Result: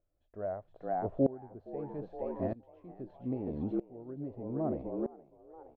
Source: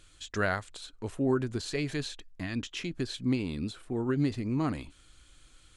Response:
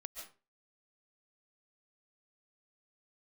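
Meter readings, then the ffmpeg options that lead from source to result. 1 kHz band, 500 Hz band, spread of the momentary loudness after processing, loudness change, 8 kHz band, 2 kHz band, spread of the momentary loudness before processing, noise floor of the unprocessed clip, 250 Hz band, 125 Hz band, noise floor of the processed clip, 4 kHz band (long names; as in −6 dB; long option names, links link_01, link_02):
−1.5 dB, −1.0 dB, 16 LU, −4.5 dB, below −35 dB, below −20 dB, 11 LU, −60 dBFS, −5.0 dB, −8.5 dB, −75 dBFS, below −35 dB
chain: -filter_complex "[0:a]lowpass=frequency=630:width_type=q:width=4.9,asplit=6[link_01][link_02][link_03][link_04][link_05][link_06];[link_02]adelay=468,afreqshift=83,volume=-6dB[link_07];[link_03]adelay=936,afreqshift=166,volume=-13.3dB[link_08];[link_04]adelay=1404,afreqshift=249,volume=-20.7dB[link_09];[link_05]adelay=1872,afreqshift=332,volume=-28dB[link_10];[link_06]adelay=2340,afreqshift=415,volume=-35.3dB[link_11];[link_01][link_07][link_08][link_09][link_10][link_11]amix=inputs=6:normalize=0,aeval=exprs='val(0)*pow(10,-23*if(lt(mod(-0.79*n/s,1),2*abs(-0.79)/1000),1-mod(-0.79*n/s,1)/(2*abs(-0.79)/1000),(mod(-0.79*n/s,1)-2*abs(-0.79)/1000)/(1-2*abs(-0.79)/1000))/20)':channel_layout=same"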